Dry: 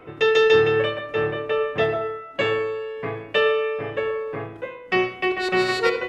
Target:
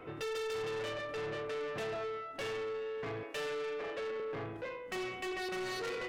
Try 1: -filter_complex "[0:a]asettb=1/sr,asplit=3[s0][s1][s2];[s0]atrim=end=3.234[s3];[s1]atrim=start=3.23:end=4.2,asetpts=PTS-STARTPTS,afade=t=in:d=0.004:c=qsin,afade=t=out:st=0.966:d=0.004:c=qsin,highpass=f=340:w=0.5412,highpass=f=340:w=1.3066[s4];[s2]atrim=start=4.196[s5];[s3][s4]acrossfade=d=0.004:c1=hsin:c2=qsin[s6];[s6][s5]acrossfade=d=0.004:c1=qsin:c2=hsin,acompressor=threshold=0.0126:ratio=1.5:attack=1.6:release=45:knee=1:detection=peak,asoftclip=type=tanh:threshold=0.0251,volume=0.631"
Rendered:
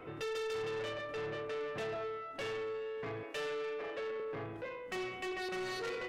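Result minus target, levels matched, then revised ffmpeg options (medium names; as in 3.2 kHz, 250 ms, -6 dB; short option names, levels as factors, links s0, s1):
compression: peak gain reduction +3 dB
-filter_complex "[0:a]asettb=1/sr,asplit=3[s0][s1][s2];[s0]atrim=end=3.234[s3];[s1]atrim=start=3.23:end=4.2,asetpts=PTS-STARTPTS,afade=t=in:d=0.004:c=qsin,afade=t=out:st=0.966:d=0.004:c=qsin,highpass=f=340:w=0.5412,highpass=f=340:w=1.3066[s4];[s2]atrim=start=4.196[s5];[s3][s4]acrossfade=d=0.004:c1=hsin:c2=qsin[s6];[s6][s5]acrossfade=d=0.004:c1=qsin:c2=hsin,acompressor=threshold=0.0335:ratio=1.5:attack=1.6:release=45:knee=1:detection=peak,asoftclip=type=tanh:threshold=0.0251,volume=0.631"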